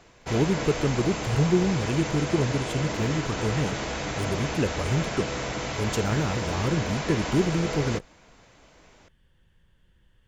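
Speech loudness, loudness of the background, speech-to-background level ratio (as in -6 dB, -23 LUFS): -27.5 LUFS, -30.5 LUFS, 3.0 dB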